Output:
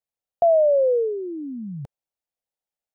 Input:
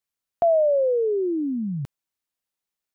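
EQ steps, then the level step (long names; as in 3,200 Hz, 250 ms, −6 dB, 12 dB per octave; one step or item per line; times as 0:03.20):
low-shelf EQ 190 Hz +7 dB
flat-topped bell 630 Hz +10 dB 1.1 octaves
−8.5 dB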